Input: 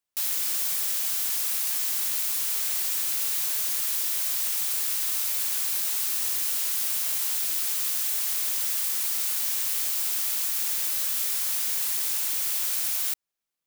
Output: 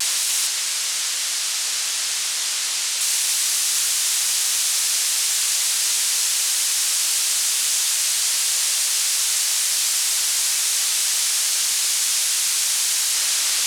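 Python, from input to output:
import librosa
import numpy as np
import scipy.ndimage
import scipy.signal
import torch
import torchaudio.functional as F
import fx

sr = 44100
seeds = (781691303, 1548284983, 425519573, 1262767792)

y = np.sign(x) * np.sqrt(np.mean(np.square(x)))
y = fx.weighting(y, sr, curve='ITU-R 468')
y = y + 10.0 ** (-6.0 / 20.0) * np.pad(y, (int(287 * sr / 1000.0), 0))[:len(y)]
y = fx.vibrato(y, sr, rate_hz=0.32, depth_cents=14.0)
y = fx.high_shelf(y, sr, hz=9200.0, db=-9.5, at=(0.47, 3.01))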